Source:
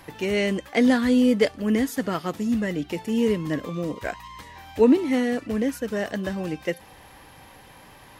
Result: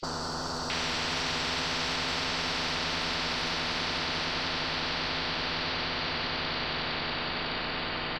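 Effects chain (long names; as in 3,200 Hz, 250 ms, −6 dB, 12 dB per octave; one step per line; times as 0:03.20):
turntable brake at the end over 2.44 s
extreme stretch with random phases 27×, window 1.00 s, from 0:07.19
in parallel at −8.5 dB: asymmetric clip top −39 dBFS
on the sum: three-band delay without the direct sound highs, lows, mids 30/700 ms, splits 1,100/5,200 Hz
low-pass that shuts in the quiet parts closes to 1,700 Hz, open at −29.5 dBFS
echo that builds up and dies away 92 ms, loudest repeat 5, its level −12 dB
on a send at −3 dB: convolution reverb, pre-delay 3 ms
on the sum: every bin compressed towards the loudest bin 10 to 1
level −4.5 dB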